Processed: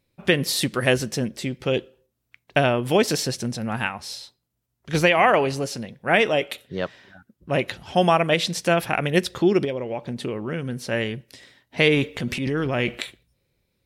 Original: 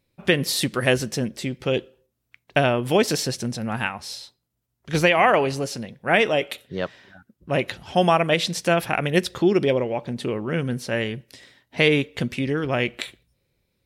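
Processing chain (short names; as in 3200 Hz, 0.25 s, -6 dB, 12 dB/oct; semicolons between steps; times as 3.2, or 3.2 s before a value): 9.64–10.85 compressor 6:1, threshold -24 dBFS, peak gain reduction 8.5 dB; 11.94–12.99 transient shaper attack -6 dB, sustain +8 dB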